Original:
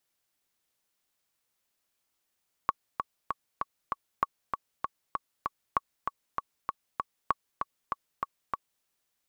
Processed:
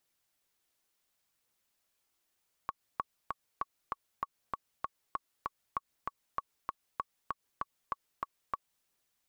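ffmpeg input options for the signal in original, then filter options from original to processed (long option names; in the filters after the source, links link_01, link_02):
-f lavfi -i "aevalsrc='pow(10,(-11-5.5*gte(mod(t,5*60/195),60/195))/20)*sin(2*PI*1120*mod(t,60/195))*exp(-6.91*mod(t,60/195)/0.03)':duration=6.15:sample_rate=44100"
-af "alimiter=limit=-21dB:level=0:latency=1:release=132,aphaser=in_gain=1:out_gain=1:delay=3.1:decay=0.21:speed=0.67:type=triangular"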